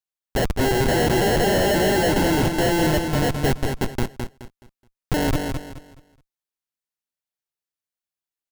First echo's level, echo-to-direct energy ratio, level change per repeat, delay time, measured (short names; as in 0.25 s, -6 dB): -5.5 dB, -5.0 dB, -11.0 dB, 0.212 s